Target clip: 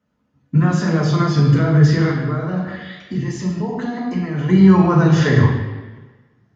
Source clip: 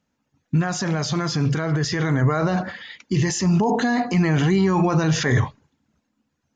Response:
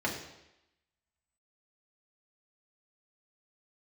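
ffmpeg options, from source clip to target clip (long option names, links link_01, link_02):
-filter_complex "[0:a]asettb=1/sr,asplit=3[link_01][link_02][link_03];[link_01]atrim=end=2.104[link_04];[link_02]atrim=start=2.1:end=4.49,asetpts=PTS-STARTPTS,afade=type=in:duration=0.004:curve=qsin,afade=type=out:start_time=2.386:duration=0.004:curve=qsin,acompressor=threshold=-27dB:ratio=6[link_05];[link_03]atrim=start=4.486[link_06];[link_04][link_05]acrossfade=duration=0.004:curve1=hsin:curve2=qsin[link_07];[link_07][link_06]acrossfade=duration=0.004:curve1=qsin:curve2=hsin[link_08];[1:a]atrim=start_sample=2205,asetrate=29988,aresample=44100[link_09];[link_08][link_09]afir=irnorm=-1:irlink=0,volume=-6.5dB"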